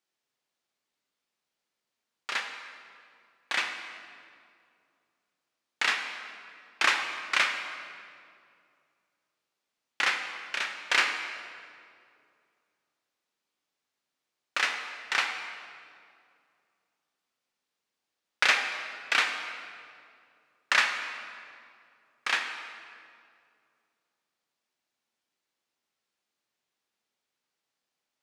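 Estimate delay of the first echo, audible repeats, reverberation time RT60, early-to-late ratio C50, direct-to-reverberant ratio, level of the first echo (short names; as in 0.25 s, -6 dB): none, none, 2.4 s, 6.0 dB, 4.0 dB, none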